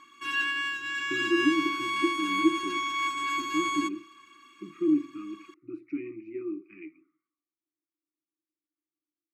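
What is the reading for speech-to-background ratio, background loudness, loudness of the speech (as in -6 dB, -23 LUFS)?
-2.0 dB, -29.0 LUFS, -31.0 LUFS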